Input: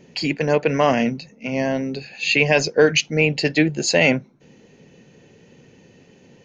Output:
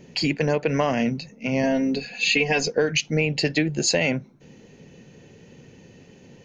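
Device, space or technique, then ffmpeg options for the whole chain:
ASMR close-microphone chain: -filter_complex "[0:a]asettb=1/sr,asplit=3[a][b][c];[a]atrim=end=1.634[d];[b]atrim=start=1.63:end=2.72,asetpts=PTS-STARTPTS,afade=t=in:d=0.004:c=qsin,afade=t=out:st=1.086:d=0.004:c=qsin,aecho=1:1:4.2:0.84,atrim=end_sample=48069[e];[c]atrim=start=2.716[f];[d][e]acrossfade=d=0.004:c1=hsin:c2=qsin[g];[g][f]acrossfade=d=0.004:c1=qsin:c2=hsin,lowshelf=f=130:g=6.5,acompressor=threshold=-18dB:ratio=6,highshelf=f=7.5k:g=4"

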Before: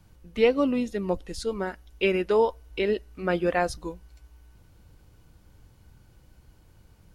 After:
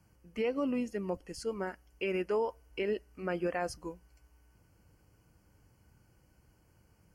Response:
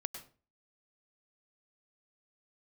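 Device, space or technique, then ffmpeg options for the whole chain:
PA system with an anti-feedback notch: -af "highpass=f=100:p=1,asuperstop=centerf=3700:order=4:qfactor=2.7,alimiter=limit=-17.5dB:level=0:latency=1:release=66,volume=-6dB"

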